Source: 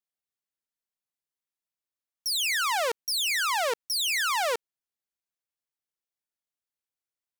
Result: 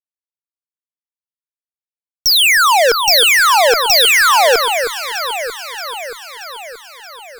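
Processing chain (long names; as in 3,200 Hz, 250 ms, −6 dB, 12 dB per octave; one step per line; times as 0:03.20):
fuzz pedal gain 57 dB, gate −58 dBFS
delay that swaps between a low-pass and a high-pass 314 ms, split 1,700 Hz, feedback 76%, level −7 dB
level +3 dB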